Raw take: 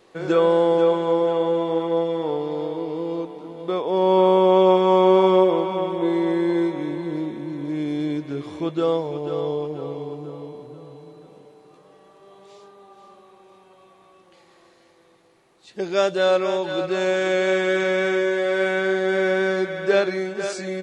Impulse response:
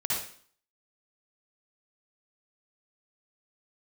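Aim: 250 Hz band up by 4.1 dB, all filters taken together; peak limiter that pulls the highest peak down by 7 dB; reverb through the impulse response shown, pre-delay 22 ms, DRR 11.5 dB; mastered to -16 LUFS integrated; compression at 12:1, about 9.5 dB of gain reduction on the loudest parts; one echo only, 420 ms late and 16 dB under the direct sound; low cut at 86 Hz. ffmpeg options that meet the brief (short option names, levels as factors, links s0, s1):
-filter_complex "[0:a]highpass=86,equalizer=f=250:t=o:g=7.5,acompressor=threshold=0.126:ratio=12,alimiter=limit=0.126:level=0:latency=1,aecho=1:1:420:0.158,asplit=2[s0][s1];[1:a]atrim=start_sample=2205,adelay=22[s2];[s1][s2]afir=irnorm=-1:irlink=0,volume=0.112[s3];[s0][s3]amix=inputs=2:normalize=0,volume=3.35"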